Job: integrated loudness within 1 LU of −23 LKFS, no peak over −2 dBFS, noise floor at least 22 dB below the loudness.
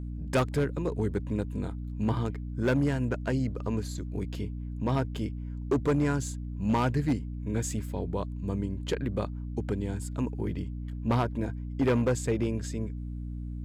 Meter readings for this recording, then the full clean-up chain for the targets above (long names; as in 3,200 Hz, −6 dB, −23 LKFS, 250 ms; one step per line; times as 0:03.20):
share of clipped samples 1.3%; peaks flattened at −20.0 dBFS; mains hum 60 Hz; hum harmonics up to 300 Hz; level of the hum −34 dBFS; integrated loudness −31.0 LKFS; sample peak −20.0 dBFS; target loudness −23.0 LKFS
→ clipped peaks rebuilt −20 dBFS
mains-hum notches 60/120/180/240/300 Hz
level +8 dB